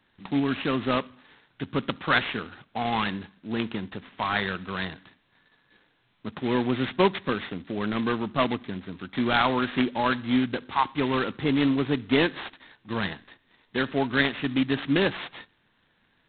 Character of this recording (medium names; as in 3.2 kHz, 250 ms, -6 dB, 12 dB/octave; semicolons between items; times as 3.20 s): a buzz of ramps at a fixed pitch in blocks of 8 samples; G.726